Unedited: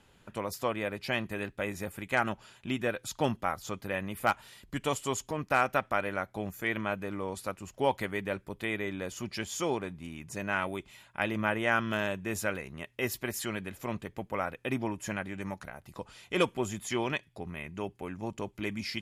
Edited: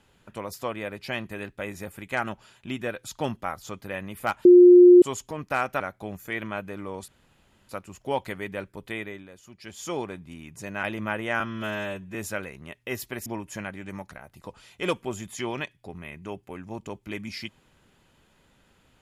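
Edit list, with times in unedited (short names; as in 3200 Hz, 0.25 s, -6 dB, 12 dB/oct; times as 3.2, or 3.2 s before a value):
4.45–5.02 bleep 356 Hz -8 dBFS
5.8–6.14 cut
7.42 insert room tone 0.61 s
8.68–9.65 dip -11.5 dB, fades 0.34 s
10.56–11.2 cut
11.77–12.27 stretch 1.5×
13.38–14.78 cut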